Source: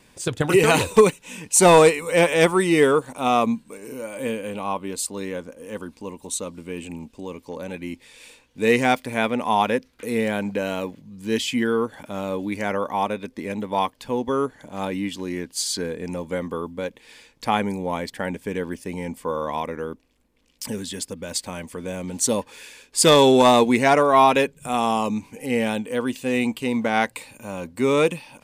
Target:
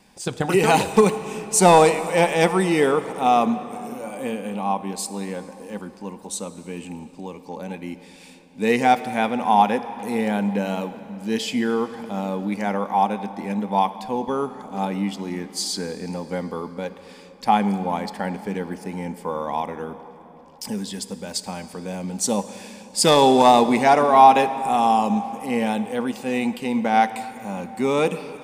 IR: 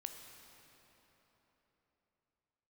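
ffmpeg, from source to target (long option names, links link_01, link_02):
-filter_complex "[0:a]equalizer=frequency=100:width_type=o:width=0.33:gain=-10,equalizer=frequency=200:width_type=o:width=0.33:gain=9,equalizer=frequency=800:width_type=o:width=0.33:gain=11,equalizer=frequency=5000:width_type=o:width=0.33:gain=5,asplit=2[link_01][link_02];[1:a]atrim=start_sample=2205[link_03];[link_02][link_03]afir=irnorm=-1:irlink=0,volume=1.5dB[link_04];[link_01][link_04]amix=inputs=2:normalize=0,volume=-7.5dB"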